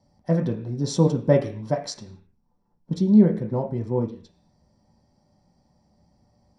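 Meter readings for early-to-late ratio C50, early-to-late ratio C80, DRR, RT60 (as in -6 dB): 11.0 dB, 15.5 dB, 1.5 dB, 0.45 s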